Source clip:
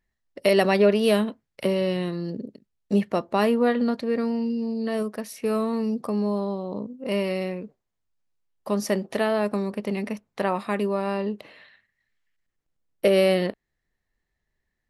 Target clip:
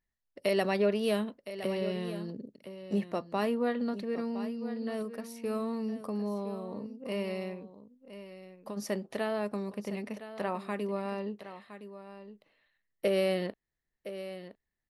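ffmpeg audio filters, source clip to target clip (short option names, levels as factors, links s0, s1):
-filter_complex "[0:a]asplit=3[s0][s1][s2];[s0]afade=t=out:st=7.53:d=0.02[s3];[s1]acompressor=threshold=0.0398:ratio=6,afade=t=in:st=7.53:d=0.02,afade=t=out:st=8.76:d=0.02[s4];[s2]afade=t=in:st=8.76:d=0.02[s5];[s3][s4][s5]amix=inputs=3:normalize=0,aecho=1:1:1014:0.237,volume=0.355"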